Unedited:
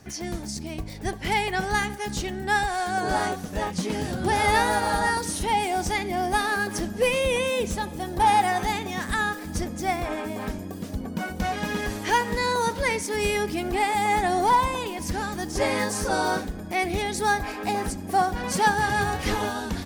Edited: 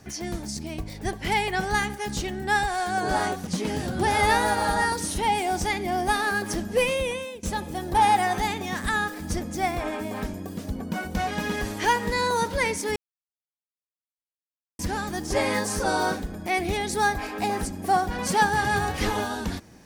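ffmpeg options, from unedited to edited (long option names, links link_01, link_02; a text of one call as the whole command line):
ffmpeg -i in.wav -filter_complex "[0:a]asplit=5[link_01][link_02][link_03][link_04][link_05];[link_01]atrim=end=3.472[link_06];[link_02]atrim=start=3.718:end=7.68,asetpts=PTS-STARTPTS,afade=type=out:start_time=3.362:duration=0.6:silence=0.0749894[link_07];[link_03]atrim=start=7.68:end=13.21,asetpts=PTS-STARTPTS,afade=type=in:duration=0.004:curve=hsin:silence=0.0749894,afade=type=out:start_time=5.526:duration=0.004:curve=hsin[link_08];[link_04]atrim=start=13.21:end=15.04,asetpts=PTS-STARTPTS,volume=0[link_09];[link_05]atrim=start=15.04,asetpts=PTS-STARTPTS,afade=type=in:duration=0.004:curve=hsin[link_10];[link_07][link_08][link_09][link_10]concat=n=4:v=0:a=1[link_11];[link_06][link_11]acrossfade=duration=0.004:curve1=hsin:curve2=hsin" out.wav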